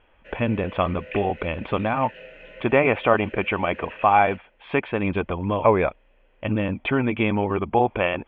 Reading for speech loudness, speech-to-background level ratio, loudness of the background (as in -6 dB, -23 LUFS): -23.0 LUFS, 19.0 dB, -42.0 LUFS